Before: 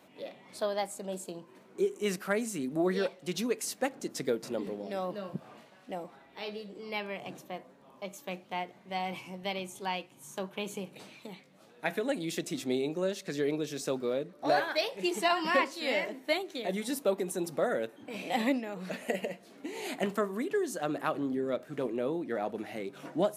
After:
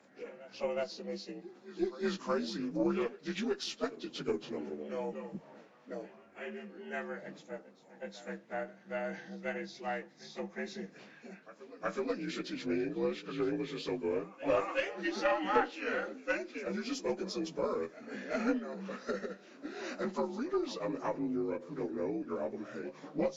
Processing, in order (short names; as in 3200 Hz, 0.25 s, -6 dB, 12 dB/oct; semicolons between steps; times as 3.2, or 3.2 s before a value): inharmonic rescaling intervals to 83%; reverse echo 0.369 s -17 dB; added harmonics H 2 -14 dB, 3 -24 dB, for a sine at -14 dBFS